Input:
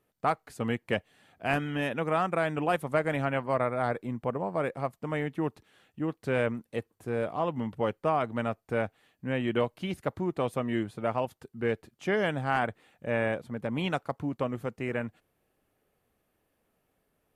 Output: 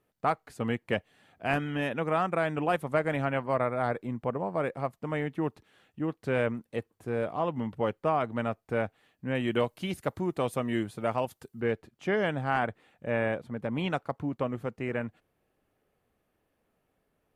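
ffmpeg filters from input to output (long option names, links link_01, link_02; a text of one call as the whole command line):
ffmpeg -i in.wav -af "asetnsamples=nb_out_samples=441:pad=0,asendcmd='9.35 highshelf g 7;11.61 highshelf g -7',highshelf=frequency=4900:gain=-4" out.wav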